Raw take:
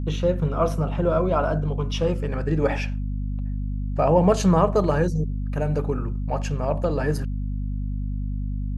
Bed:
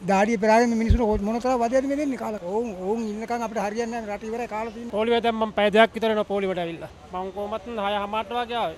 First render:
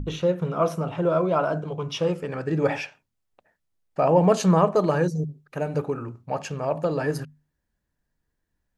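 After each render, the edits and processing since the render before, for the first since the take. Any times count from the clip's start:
mains-hum notches 50/100/150/200/250 Hz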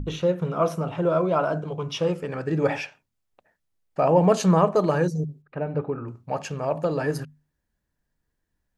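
0:05.42–0:06.08: high-frequency loss of the air 410 metres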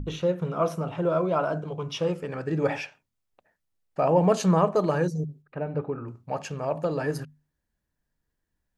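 level −2.5 dB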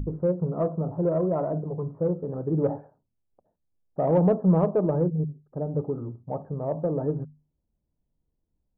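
Gaussian smoothing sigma 11 samples
in parallel at −6 dB: soft clipping −22 dBFS, distortion −13 dB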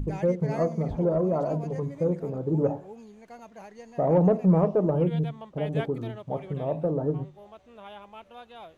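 mix in bed −19 dB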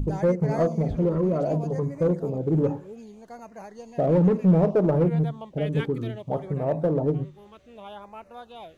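auto-filter notch sine 0.64 Hz 660–3,400 Hz
in parallel at −5 dB: hard clipping −23 dBFS, distortion −10 dB

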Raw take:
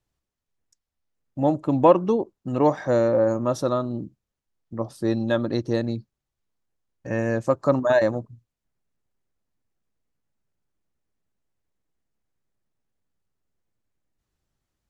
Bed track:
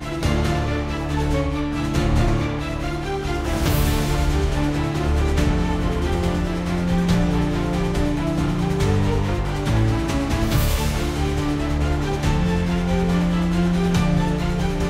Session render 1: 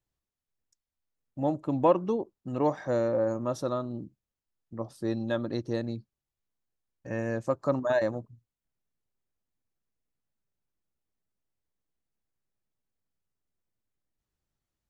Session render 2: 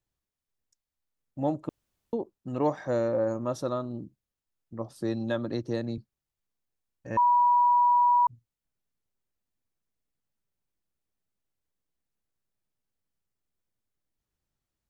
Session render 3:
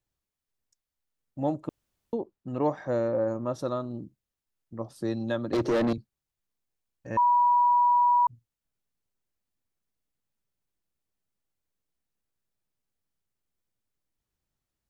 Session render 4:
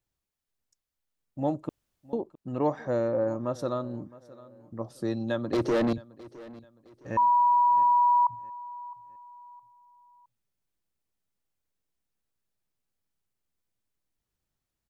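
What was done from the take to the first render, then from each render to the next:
level −7 dB
0:01.69–0:02.13: fill with room tone; 0:04.96–0:05.98: multiband upward and downward compressor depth 40%; 0:07.17–0:08.27: beep over 971 Hz −18 dBFS
0:02.19–0:03.58: high-shelf EQ 5,200 Hz → 4,100 Hz −9 dB; 0:05.53–0:05.93: mid-hump overdrive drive 33 dB, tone 1,400 Hz, clips at −16.5 dBFS
repeating echo 663 ms, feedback 37%, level −20 dB

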